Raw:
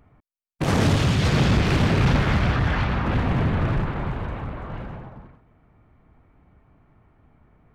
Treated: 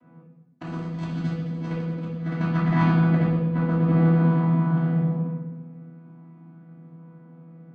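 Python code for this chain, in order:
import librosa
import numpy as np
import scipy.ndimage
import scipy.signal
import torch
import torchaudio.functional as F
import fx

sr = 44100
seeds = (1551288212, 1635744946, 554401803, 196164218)

y = fx.chord_vocoder(x, sr, chord='bare fifth', root=52)
y = fx.over_compress(y, sr, threshold_db=-29.0, ratio=-0.5)
y = fx.room_shoebox(y, sr, seeds[0], volume_m3=520.0, walls='mixed', distance_m=2.9)
y = F.gain(torch.from_numpy(y), -3.5).numpy()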